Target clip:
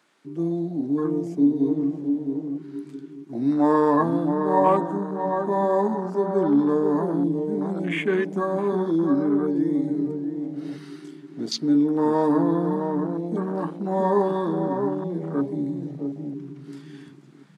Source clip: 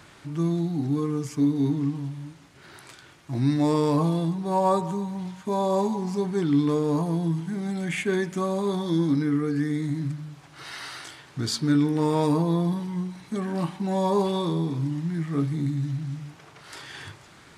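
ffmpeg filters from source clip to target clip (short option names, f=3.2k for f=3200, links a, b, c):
-filter_complex "[0:a]asplit=3[a][b][c];[a]afade=t=out:st=1.67:d=0.02[d];[b]adynamicequalizer=threshold=0.01:dfrequency=1200:dqfactor=0.96:tfrequency=1200:tqfactor=0.96:attack=5:release=100:ratio=0.375:range=3:mode=boostabove:tftype=bell,afade=t=in:st=1.67:d=0.02,afade=t=out:st=4.03:d=0.02[e];[c]afade=t=in:st=4.03:d=0.02[f];[d][e][f]amix=inputs=3:normalize=0,asplit=2[g][h];[h]adelay=664,lowpass=f=1.2k:p=1,volume=-5dB,asplit=2[i][j];[j]adelay=664,lowpass=f=1.2k:p=1,volume=0.33,asplit=2[k][l];[l]adelay=664,lowpass=f=1.2k:p=1,volume=0.33,asplit=2[m][n];[n]adelay=664,lowpass=f=1.2k:p=1,volume=0.33[o];[g][i][k][m][o]amix=inputs=5:normalize=0,afwtdn=0.0251,highpass=f=210:w=0.5412,highpass=f=210:w=1.3066,volume=3dB"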